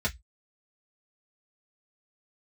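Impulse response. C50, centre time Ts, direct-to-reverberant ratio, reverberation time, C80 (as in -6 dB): 23.0 dB, 8 ms, -4.5 dB, 0.10 s, 36.0 dB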